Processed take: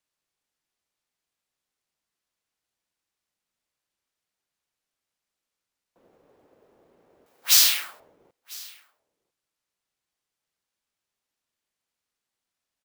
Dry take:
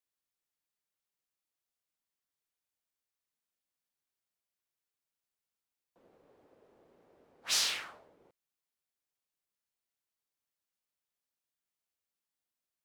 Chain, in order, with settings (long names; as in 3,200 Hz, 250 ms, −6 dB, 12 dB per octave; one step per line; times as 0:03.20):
sample-rate reduction 19,000 Hz, jitter 0%
0:07.26–0:08.00: spectral tilt +3.5 dB per octave
single-tap delay 999 ms −23 dB
level +4 dB